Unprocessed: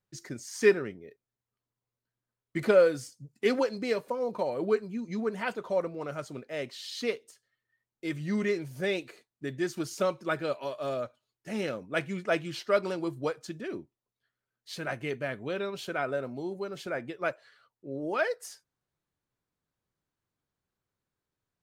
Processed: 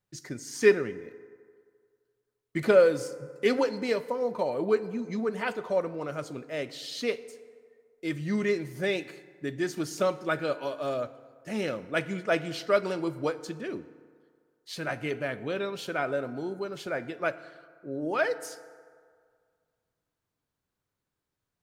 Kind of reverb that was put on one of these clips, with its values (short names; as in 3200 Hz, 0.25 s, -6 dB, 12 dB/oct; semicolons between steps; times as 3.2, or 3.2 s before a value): FDN reverb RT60 2 s, low-frequency decay 0.75×, high-frequency decay 0.5×, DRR 13.5 dB; gain +1.5 dB